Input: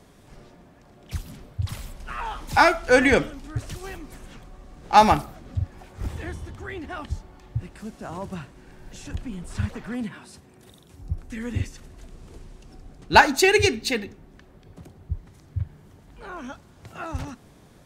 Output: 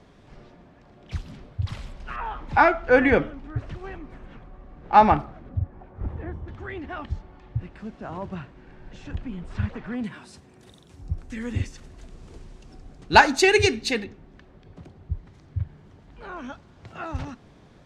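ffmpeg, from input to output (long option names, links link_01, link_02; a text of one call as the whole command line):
ffmpeg -i in.wav -af "asetnsamples=nb_out_samples=441:pad=0,asendcmd='2.16 lowpass f 2100;5.49 lowpass f 1200;6.48 lowpass f 3100;10.04 lowpass f 8000;14.04 lowpass f 4700',lowpass=4400" out.wav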